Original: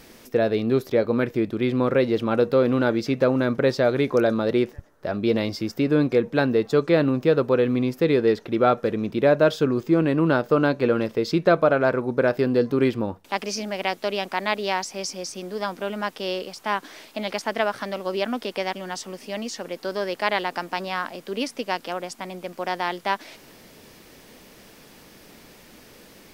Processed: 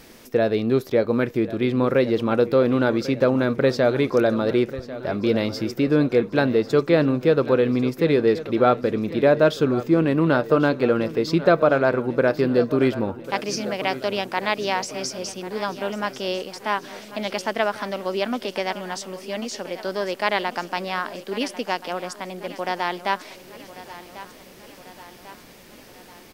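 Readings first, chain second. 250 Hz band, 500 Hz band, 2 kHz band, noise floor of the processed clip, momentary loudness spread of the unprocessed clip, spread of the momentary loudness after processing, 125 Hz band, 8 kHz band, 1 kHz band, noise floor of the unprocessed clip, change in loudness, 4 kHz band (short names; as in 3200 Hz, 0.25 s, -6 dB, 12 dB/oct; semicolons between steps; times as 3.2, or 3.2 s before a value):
+1.0 dB, +1.0 dB, +1.0 dB, -46 dBFS, 11 LU, 12 LU, +1.0 dB, +1.0 dB, +1.0 dB, -50 dBFS, +1.0 dB, +1.0 dB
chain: on a send: feedback echo 1.094 s, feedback 57%, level -15.5 dB; on the sum: gain +1 dB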